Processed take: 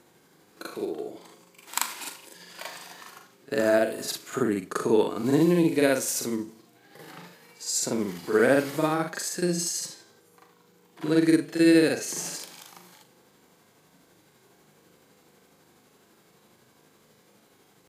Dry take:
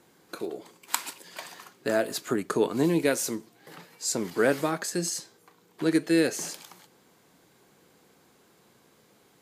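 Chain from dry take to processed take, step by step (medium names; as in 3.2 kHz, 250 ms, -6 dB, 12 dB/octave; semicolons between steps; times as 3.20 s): granular stretch 1.9×, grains 167 ms; harmonic-percussive split percussive -4 dB; trim +4 dB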